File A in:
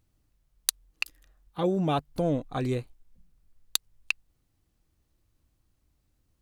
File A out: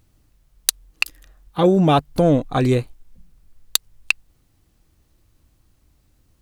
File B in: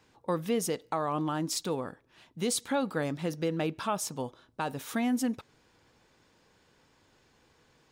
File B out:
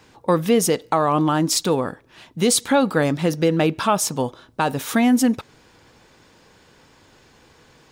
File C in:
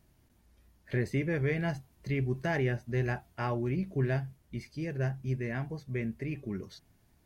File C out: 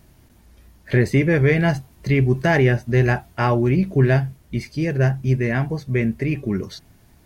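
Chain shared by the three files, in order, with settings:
saturation -12.5 dBFS; normalise loudness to -20 LUFS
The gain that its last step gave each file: +11.5 dB, +12.5 dB, +13.5 dB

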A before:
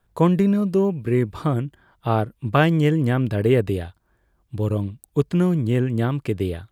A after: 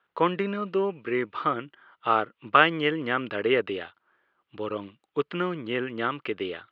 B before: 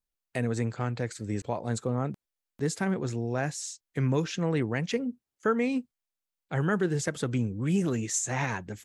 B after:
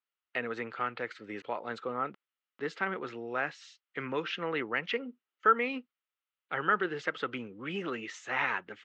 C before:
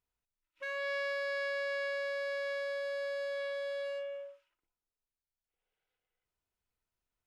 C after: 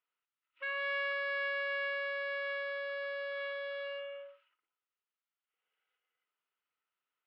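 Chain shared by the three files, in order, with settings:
cabinet simulation 410–3800 Hz, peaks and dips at 670 Hz -4 dB, 1.3 kHz +10 dB, 2 kHz +5 dB, 2.9 kHz +7 dB; trim -1.5 dB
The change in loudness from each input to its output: -5.5 LU, -3.5 LU, 0.0 LU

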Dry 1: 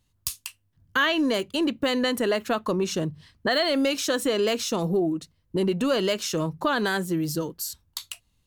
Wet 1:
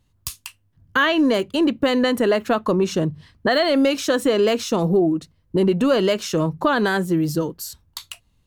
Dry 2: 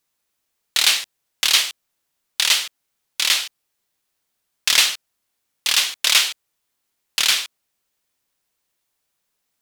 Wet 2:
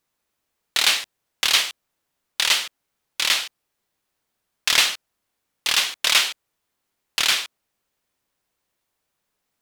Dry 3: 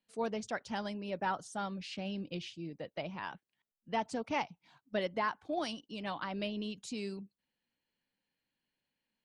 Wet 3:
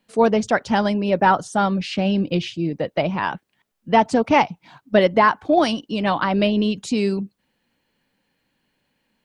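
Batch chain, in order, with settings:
treble shelf 2.4 kHz -7.5 dB; normalise loudness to -20 LUFS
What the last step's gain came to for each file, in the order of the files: +6.5 dB, +3.0 dB, +19.5 dB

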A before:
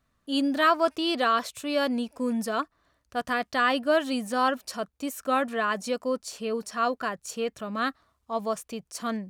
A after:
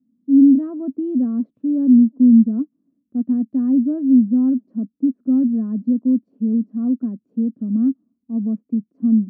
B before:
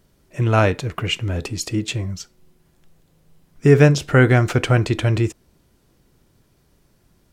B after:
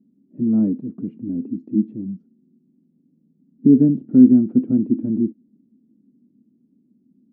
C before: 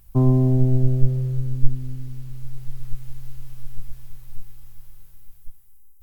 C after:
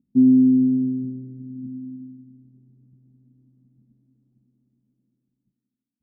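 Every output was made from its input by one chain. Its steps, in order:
Butterworth band-pass 240 Hz, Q 3.3; normalise loudness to -18 LUFS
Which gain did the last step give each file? +18.5 dB, +12.0 dB, +9.5 dB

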